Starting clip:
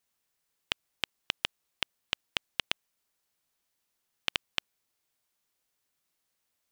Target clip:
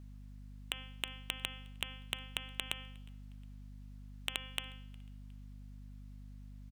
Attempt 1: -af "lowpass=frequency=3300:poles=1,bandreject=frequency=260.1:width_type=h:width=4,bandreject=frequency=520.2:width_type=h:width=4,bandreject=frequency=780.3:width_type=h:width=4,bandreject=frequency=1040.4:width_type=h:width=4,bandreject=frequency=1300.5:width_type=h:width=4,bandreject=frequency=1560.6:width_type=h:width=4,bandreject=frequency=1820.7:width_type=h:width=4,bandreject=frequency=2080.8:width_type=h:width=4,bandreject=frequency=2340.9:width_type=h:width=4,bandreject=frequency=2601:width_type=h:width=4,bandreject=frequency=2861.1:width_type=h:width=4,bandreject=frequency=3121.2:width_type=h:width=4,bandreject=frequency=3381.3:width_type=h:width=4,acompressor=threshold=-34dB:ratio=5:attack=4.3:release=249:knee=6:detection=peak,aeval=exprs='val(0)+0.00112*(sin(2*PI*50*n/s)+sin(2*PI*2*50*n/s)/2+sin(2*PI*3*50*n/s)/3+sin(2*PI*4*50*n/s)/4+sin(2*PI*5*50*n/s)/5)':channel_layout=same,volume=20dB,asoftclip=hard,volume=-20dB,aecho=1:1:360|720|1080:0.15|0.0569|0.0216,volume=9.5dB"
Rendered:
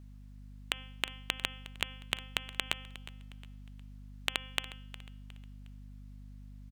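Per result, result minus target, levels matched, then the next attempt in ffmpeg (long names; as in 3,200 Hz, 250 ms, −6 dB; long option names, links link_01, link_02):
echo-to-direct +11 dB; gain into a clipping stage and back: distortion −6 dB
-af "lowpass=frequency=3300:poles=1,bandreject=frequency=260.1:width_type=h:width=4,bandreject=frequency=520.2:width_type=h:width=4,bandreject=frequency=780.3:width_type=h:width=4,bandreject=frequency=1040.4:width_type=h:width=4,bandreject=frequency=1300.5:width_type=h:width=4,bandreject=frequency=1560.6:width_type=h:width=4,bandreject=frequency=1820.7:width_type=h:width=4,bandreject=frequency=2080.8:width_type=h:width=4,bandreject=frequency=2340.9:width_type=h:width=4,bandreject=frequency=2601:width_type=h:width=4,bandreject=frequency=2861.1:width_type=h:width=4,bandreject=frequency=3121.2:width_type=h:width=4,bandreject=frequency=3381.3:width_type=h:width=4,acompressor=threshold=-34dB:ratio=5:attack=4.3:release=249:knee=6:detection=peak,aeval=exprs='val(0)+0.00112*(sin(2*PI*50*n/s)+sin(2*PI*2*50*n/s)/2+sin(2*PI*3*50*n/s)/3+sin(2*PI*4*50*n/s)/4+sin(2*PI*5*50*n/s)/5)':channel_layout=same,volume=20dB,asoftclip=hard,volume=-20dB,aecho=1:1:360|720:0.0422|0.016,volume=9.5dB"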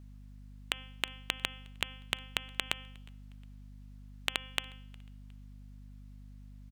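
gain into a clipping stage and back: distortion −6 dB
-af "lowpass=frequency=3300:poles=1,bandreject=frequency=260.1:width_type=h:width=4,bandreject=frequency=520.2:width_type=h:width=4,bandreject=frequency=780.3:width_type=h:width=4,bandreject=frequency=1040.4:width_type=h:width=4,bandreject=frequency=1300.5:width_type=h:width=4,bandreject=frequency=1560.6:width_type=h:width=4,bandreject=frequency=1820.7:width_type=h:width=4,bandreject=frequency=2080.8:width_type=h:width=4,bandreject=frequency=2340.9:width_type=h:width=4,bandreject=frequency=2601:width_type=h:width=4,bandreject=frequency=2861.1:width_type=h:width=4,bandreject=frequency=3121.2:width_type=h:width=4,bandreject=frequency=3381.3:width_type=h:width=4,acompressor=threshold=-34dB:ratio=5:attack=4.3:release=249:knee=6:detection=peak,aeval=exprs='val(0)+0.00112*(sin(2*PI*50*n/s)+sin(2*PI*2*50*n/s)/2+sin(2*PI*3*50*n/s)/3+sin(2*PI*4*50*n/s)/4+sin(2*PI*5*50*n/s)/5)':channel_layout=same,volume=28dB,asoftclip=hard,volume=-28dB,aecho=1:1:360|720:0.0422|0.016,volume=9.5dB"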